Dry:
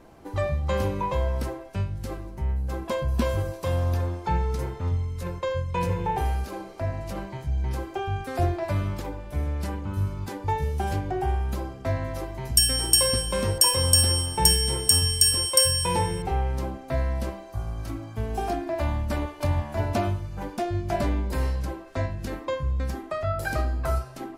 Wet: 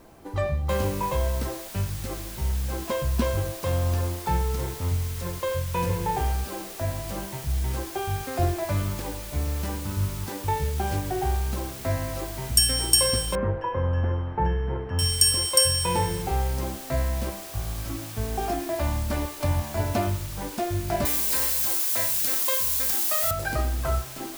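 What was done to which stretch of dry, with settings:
0:00.69: noise floor change −64 dB −41 dB
0:13.35–0:14.99: low-pass filter 1,700 Hz 24 dB per octave
0:21.05–0:23.31: spectral tilt +4.5 dB per octave

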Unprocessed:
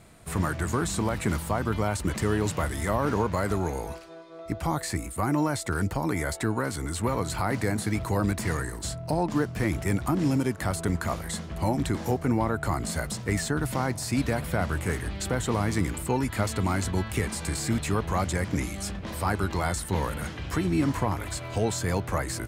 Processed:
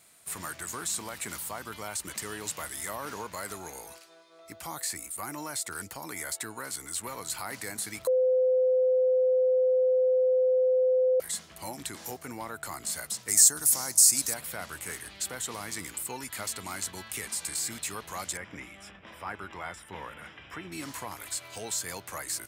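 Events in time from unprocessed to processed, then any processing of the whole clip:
0:08.07–0:11.20: beep over 512 Hz −7.5 dBFS
0:13.28–0:14.34: high shelf with overshoot 4,500 Hz +12.5 dB, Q 1.5
0:18.37–0:20.72: Savitzky-Golay smoothing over 25 samples
whole clip: spectral tilt +4 dB per octave; level −9 dB

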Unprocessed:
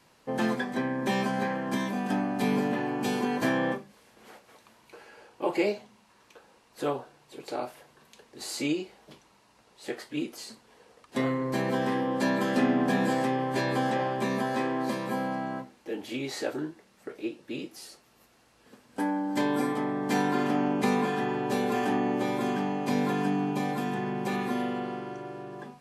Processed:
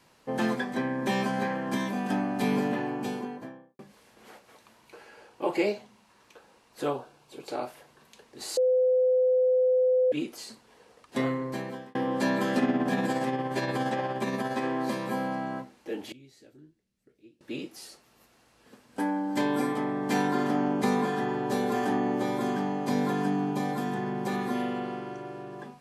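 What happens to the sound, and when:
0:02.64–0:03.79: fade out and dull
0:06.88–0:07.51: notch filter 1,900 Hz, Q 6
0:08.57–0:10.12: beep over 509 Hz −19.5 dBFS
0:11.25–0:11.95: fade out
0:12.58–0:14.64: amplitude tremolo 17 Hz, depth 40%
0:16.12–0:17.41: guitar amp tone stack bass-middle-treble 10-0-1
0:20.27–0:24.54: parametric band 2,600 Hz −7.5 dB 0.39 octaves

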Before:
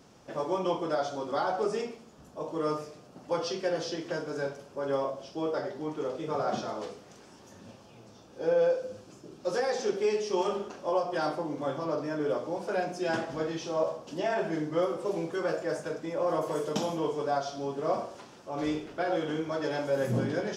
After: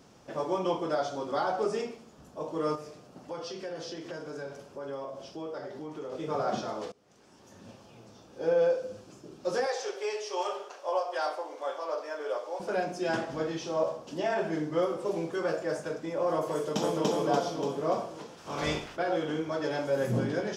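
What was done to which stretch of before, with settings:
0:02.75–0:06.12: downward compressor 2.5 to 1, threshold −38 dBFS
0:06.92–0:07.69: fade in linear, from −22.5 dB
0:09.66–0:12.60: high-pass filter 490 Hz 24 dB per octave
0:16.53–0:17.10: delay throw 290 ms, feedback 55%, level −0.5 dB
0:18.37–0:18.95: ceiling on every frequency bin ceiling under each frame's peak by 18 dB

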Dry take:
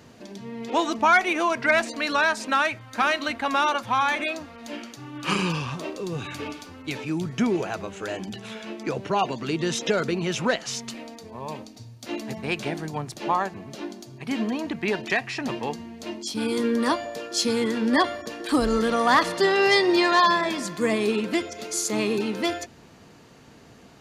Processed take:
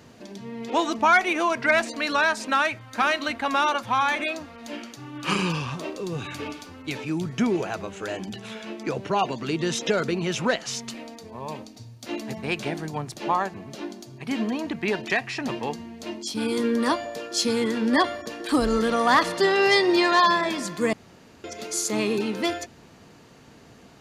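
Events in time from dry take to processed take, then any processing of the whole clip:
0:20.93–0:21.44: fill with room tone

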